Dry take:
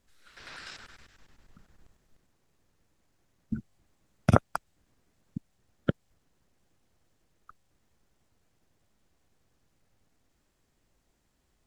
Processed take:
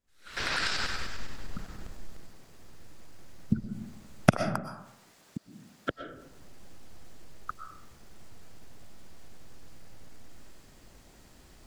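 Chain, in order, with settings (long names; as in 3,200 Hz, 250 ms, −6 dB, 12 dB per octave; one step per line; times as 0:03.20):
camcorder AGC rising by 77 dB per second
0:04.32–0:05.90: high-pass filter 650 Hz 6 dB per octave
on a send: parametric band 4,700 Hz +10.5 dB 0.34 octaves + convolution reverb RT60 0.85 s, pre-delay 80 ms, DRR 7.5 dB
on the sum: level −13 dB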